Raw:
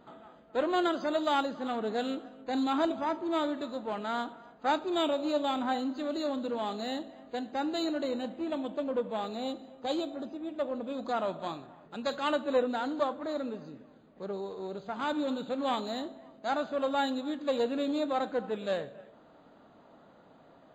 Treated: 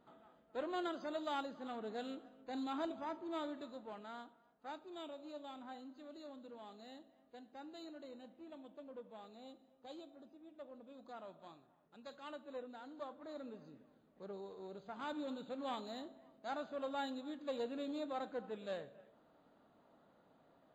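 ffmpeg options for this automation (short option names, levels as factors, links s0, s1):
-af "volume=0.668,afade=t=out:st=3.6:d=0.74:silence=0.398107,afade=t=in:st=12.86:d=0.87:silence=0.375837"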